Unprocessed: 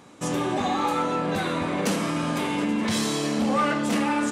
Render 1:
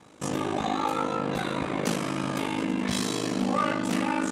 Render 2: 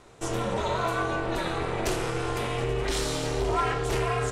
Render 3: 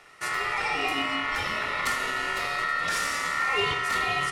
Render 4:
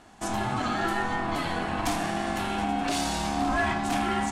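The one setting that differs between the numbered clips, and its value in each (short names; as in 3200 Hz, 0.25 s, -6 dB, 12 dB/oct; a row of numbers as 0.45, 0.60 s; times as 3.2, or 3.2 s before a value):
ring modulator, frequency: 26, 170, 1600, 500 Hz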